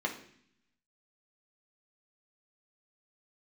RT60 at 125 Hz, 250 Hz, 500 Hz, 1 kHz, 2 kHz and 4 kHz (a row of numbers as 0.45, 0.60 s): 1.0, 1.0, 0.65, 0.60, 0.75, 0.80 s